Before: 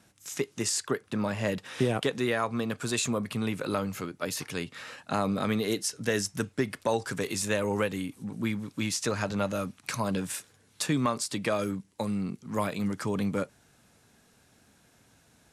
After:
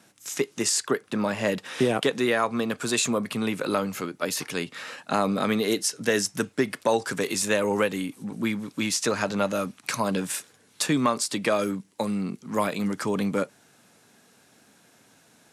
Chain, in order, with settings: HPF 180 Hz 12 dB/oct; gain +5 dB

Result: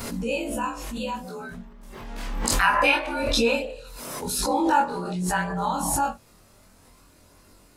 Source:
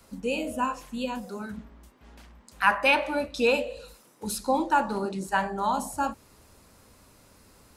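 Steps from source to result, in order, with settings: short-time reversal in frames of 43 ms; chorus voices 2, 0.27 Hz, delay 26 ms, depth 1.7 ms; backwards sustainer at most 31 dB/s; gain +6.5 dB

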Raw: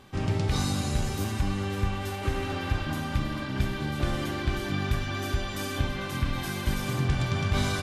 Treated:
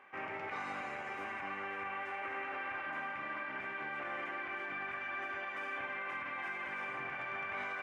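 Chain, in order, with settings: HPF 740 Hz 12 dB/oct; resonant high shelf 3000 Hz -10.5 dB, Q 3; limiter -28.5 dBFS, peak gain reduction 8 dB; tape spacing loss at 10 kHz 21 dB

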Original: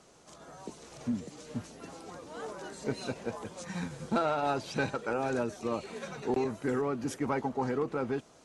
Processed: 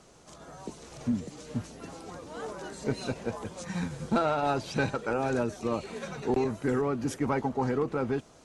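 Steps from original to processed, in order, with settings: low shelf 110 Hz +8.5 dB; gain +2 dB

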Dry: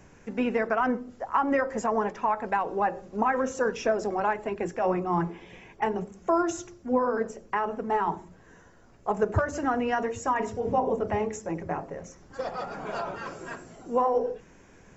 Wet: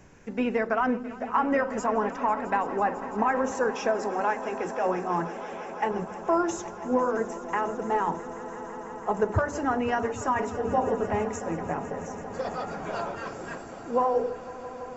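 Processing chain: 3.71–5.91 low shelf 160 Hz -12 dB; swelling echo 0.166 s, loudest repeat 5, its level -18 dB

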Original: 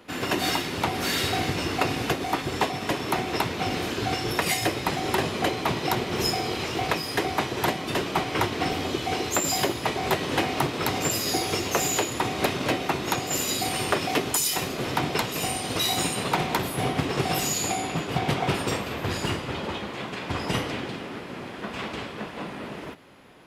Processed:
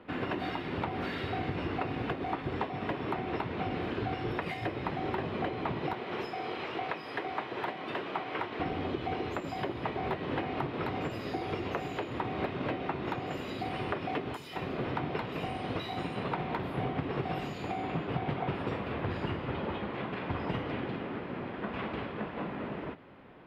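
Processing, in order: 5.93–8.6 HPF 550 Hz 6 dB/oct; compressor 4:1, threshold -29 dBFS, peak gain reduction 9.5 dB; air absorption 450 m

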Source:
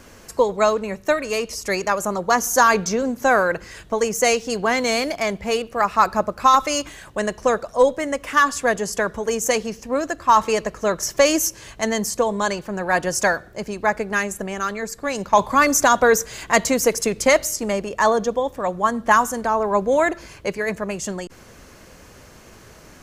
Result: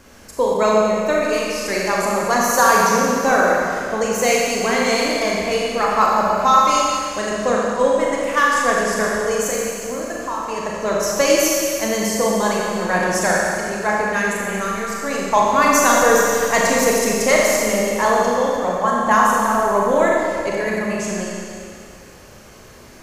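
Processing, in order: 9.49–10.59 compressor, threshold -24 dBFS, peak gain reduction 13.5 dB; Schroeder reverb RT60 2.4 s, combs from 29 ms, DRR -4 dB; gain -2.5 dB

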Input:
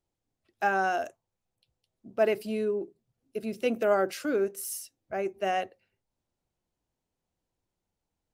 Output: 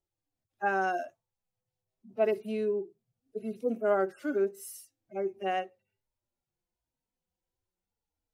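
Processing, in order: median-filter separation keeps harmonic; dynamic EQ 370 Hz, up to +3 dB, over -41 dBFS, Q 3.7; gain -2.5 dB

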